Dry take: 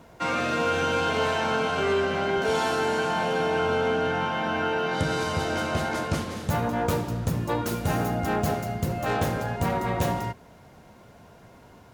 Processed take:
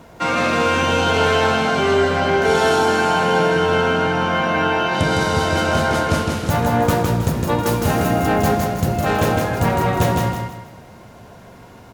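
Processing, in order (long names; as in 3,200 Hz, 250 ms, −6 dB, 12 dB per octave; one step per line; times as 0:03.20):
repeating echo 159 ms, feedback 35%, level −3.5 dB
level +7 dB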